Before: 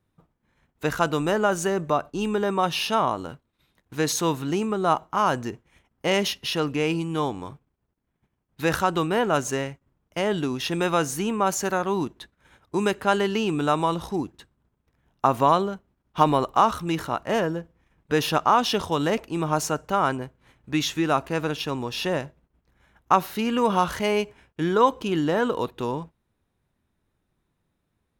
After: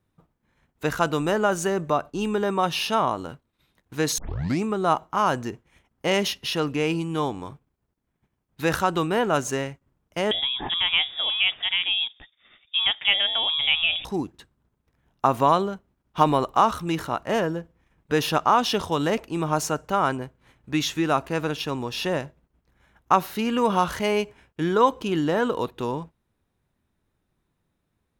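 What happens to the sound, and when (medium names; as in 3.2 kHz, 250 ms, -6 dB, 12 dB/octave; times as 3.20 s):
4.18 s: tape start 0.46 s
10.31–14.05 s: frequency inversion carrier 3.6 kHz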